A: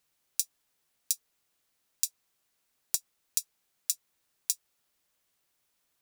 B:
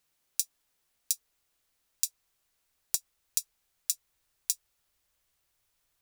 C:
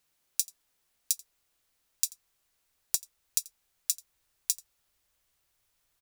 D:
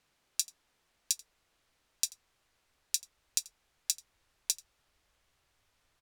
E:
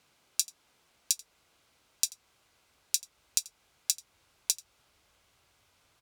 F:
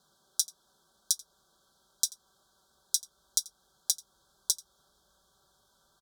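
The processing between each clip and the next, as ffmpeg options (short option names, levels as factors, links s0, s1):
-af "asubboost=boost=5.5:cutoff=86"
-af "aecho=1:1:86:0.075,volume=1.12"
-af "aemphasis=mode=reproduction:type=50fm,volume=2.11"
-filter_complex "[0:a]highpass=62,bandreject=f=1800:w=10,asplit=2[s0][s1];[s1]acompressor=threshold=0.0141:ratio=6,volume=1.26[s2];[s0][s2]amix=inputs=2:normalize=0"
-af "asuperstop=centerf=2300:order=20:qfactor=1.5,aecho=1:1:5.2:0.7,volume=0.891"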